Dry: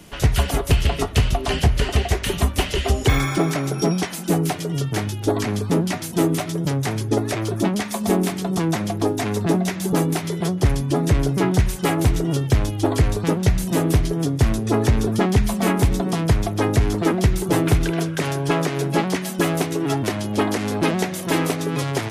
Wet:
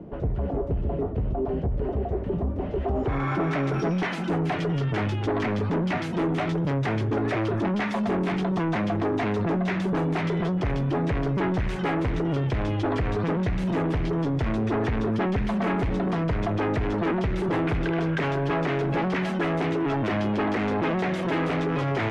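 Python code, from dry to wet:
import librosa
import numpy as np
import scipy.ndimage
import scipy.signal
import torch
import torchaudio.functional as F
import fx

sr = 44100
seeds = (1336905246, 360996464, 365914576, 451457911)

p1 = fx.low_shelf(x, sr, hz=110.0, db=-7.5)
p2 = fx.over_compress(p1, sr, threshold_db=-28.0, ratio=-1.0)
p3 = p1 + F.gain(torch.from_numpy(p2), 0.0).numpy()
p4 = 10.0 ** (-19.0 / 20.0) * np.tanh(p3 / 10.0 ** (-19.0 / 20.0))
p5 = fx.filter_sweep_lowpass(p4, sr, from_hz=510.0, to_hz=2200.0, start_s=2.6, end_s=3.6, q=1.0)
y = F.gain(torch.from_numpy(p5), -2.0).numpy()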